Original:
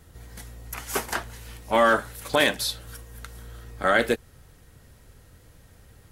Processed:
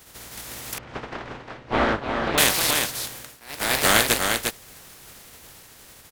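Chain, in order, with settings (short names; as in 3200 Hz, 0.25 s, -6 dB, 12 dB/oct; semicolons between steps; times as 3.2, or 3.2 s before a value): spectral contrast lowered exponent 0.32; echo 0.352 s -5 dB; echoes that change speed 0.181 s, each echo +2 st, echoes 2; 0.78–2.38 tape spacing loss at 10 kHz 45 dB; 3.08–3.78 dip -21.5 dB, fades 0.32 s; gain +2 dB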